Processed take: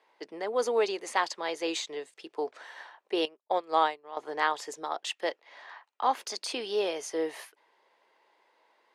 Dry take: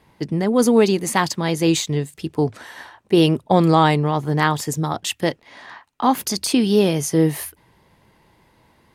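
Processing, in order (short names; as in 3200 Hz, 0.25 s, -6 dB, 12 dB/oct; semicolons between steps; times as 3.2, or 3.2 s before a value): HPF 440 Hz 24 dB/oct; air absorption 81 m; 3.25–4.17 upward expander 2.5:1, over -34 dBFS; gain -7 dB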